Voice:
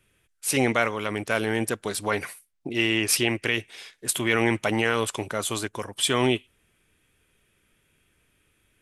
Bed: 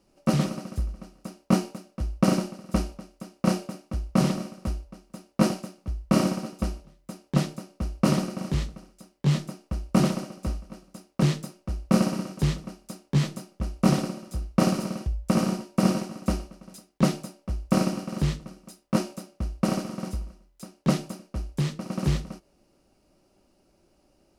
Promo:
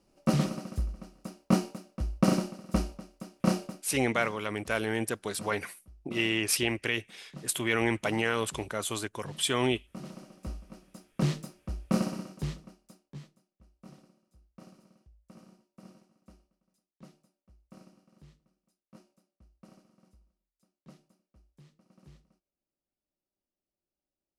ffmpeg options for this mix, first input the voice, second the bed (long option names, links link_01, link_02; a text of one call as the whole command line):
ffmpeg -i stem1.wav -i stem2.wav -filter_complex "[0:a]adelay=3400,volume=-5dB[link_01];[1:a]volume=14dB,afade=type=out:start_time=3.64:duration=0.3:silence=0.105925,afade=type=in:start_time=10.02:duration=0.78:silence=0.141254,afade=type=out:start_time=11.78:duration=1.54:silence=0.0530884[link_02];[link_01][link_02]amix=inputs=2:normalize=0" out.wav